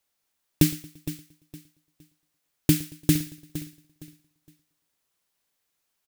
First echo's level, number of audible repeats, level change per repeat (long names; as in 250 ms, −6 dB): −20.5 dB, 6, repeats not evenly spaced